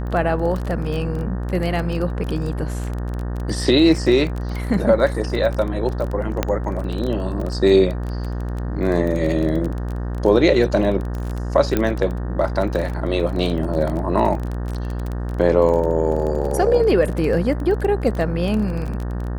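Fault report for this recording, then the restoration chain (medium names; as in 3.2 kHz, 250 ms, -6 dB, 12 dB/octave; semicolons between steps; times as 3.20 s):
buzz 60 Hz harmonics 31 -25 dBFS
crackle 22 per s -24 dBFS
6.43 s: pop -5 dBFS
11.77 s: pop -6 dBFS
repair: de-click; de-hum 60 Hz, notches 31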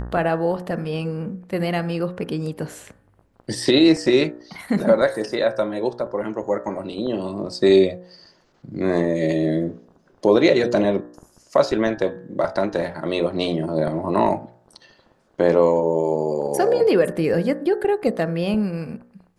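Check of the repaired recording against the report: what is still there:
nothing left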